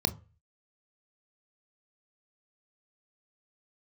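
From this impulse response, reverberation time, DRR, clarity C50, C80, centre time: 0.35 s, 10.0 dB, 19.0 dB, 25.0 dB, 6 ms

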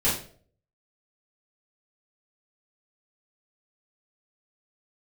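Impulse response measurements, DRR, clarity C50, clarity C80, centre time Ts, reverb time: -10.5 dB, 4.5 dB, 10.0 dB, 37 ms, no single decay rate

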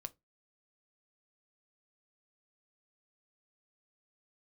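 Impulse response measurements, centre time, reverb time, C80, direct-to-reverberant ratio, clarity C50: 2 ms, 0.20 s, 34.5 dB, 10.0 dB, 25.0 dB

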